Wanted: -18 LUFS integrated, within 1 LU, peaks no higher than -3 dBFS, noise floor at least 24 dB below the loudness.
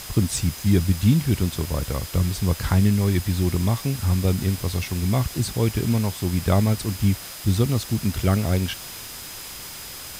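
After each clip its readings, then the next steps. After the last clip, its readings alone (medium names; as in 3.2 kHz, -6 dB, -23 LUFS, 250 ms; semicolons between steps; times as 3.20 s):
steady tone 5 kHz; tone level -44 dBFS; noise floor -37 dBFS; noise floor target -47 dBFS; loudness -23.0 LUFS; peak level -6.5 dBFS; loudness target -18.0 LUFS
-> band-stop 5 kHz, Q 30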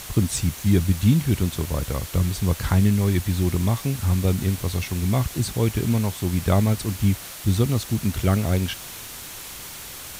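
steady tone not found; noise floor -38 dBFS; noise floor target -47 dBFS
-> noise print and reduce 9 dB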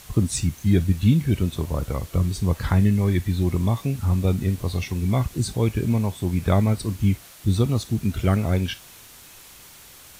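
noise floor -46 dBFS; noise floor target -47 dBFS
-> noise print and reduce 6 dB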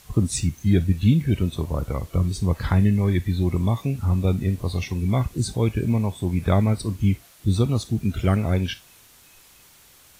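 noise floor -52 dBFS; loudness -23.0 LUFS; peak level -6.5 dBFS; loudness target -18.0 LUFS
-> trim +5 dB; peak limiter -3 dBFS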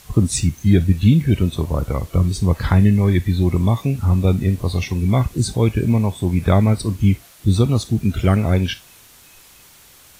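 loudness -18.0 LUFS; peak level -3.0 dBFS; noise floor -47 dBFS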